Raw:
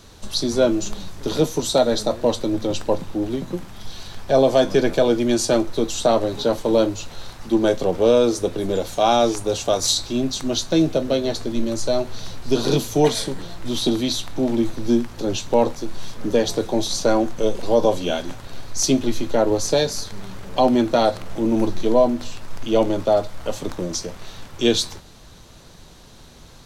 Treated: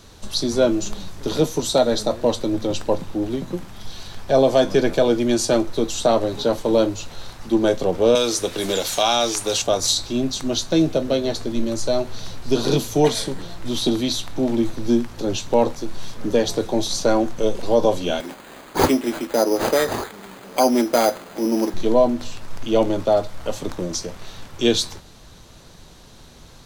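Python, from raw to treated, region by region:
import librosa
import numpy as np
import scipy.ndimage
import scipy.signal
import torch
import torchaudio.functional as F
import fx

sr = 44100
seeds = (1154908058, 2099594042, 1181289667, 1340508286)

y = fx.chain(x, sr, fx.tilt_shelf(db=-7.5, hz=1100.0),
    fx.band_squash(depth_pct=70), at=(8.15, 9.62))
y = fx.chain(y, sr, fx.highpass(hz=210.0, slope=24),
    fx.peak_eq(hz=6100.0, db=7.5, octaves=0.51),
    fx.resample_bad(factor=8, down='none', up='hold'), at=(18.2, 21.74))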